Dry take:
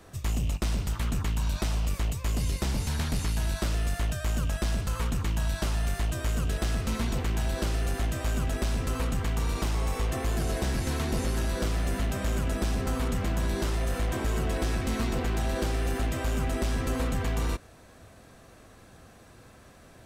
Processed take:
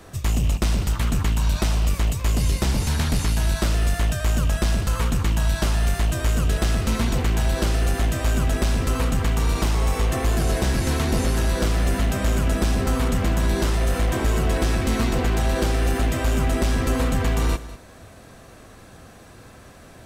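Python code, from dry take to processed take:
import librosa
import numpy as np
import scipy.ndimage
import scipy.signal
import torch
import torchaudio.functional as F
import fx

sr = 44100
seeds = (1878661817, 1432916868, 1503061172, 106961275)

y = x + 10.0 ** (-16.0 / 20.0) * np.pad(x, (int(198 * sr / 1000.0), 0))[:len(x)]
y = y * 10.0 ** (7.0 / 20.0)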